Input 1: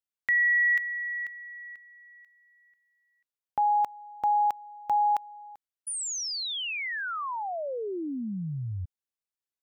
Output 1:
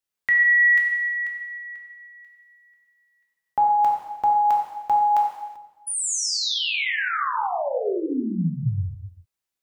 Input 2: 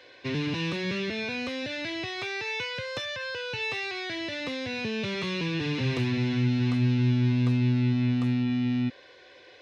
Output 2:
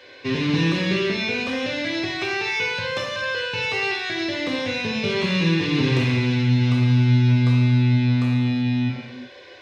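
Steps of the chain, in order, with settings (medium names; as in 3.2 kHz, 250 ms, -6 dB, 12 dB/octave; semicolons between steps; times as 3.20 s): gated-style reverb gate 410 ms falling, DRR -1.5 dB; trim +4 dB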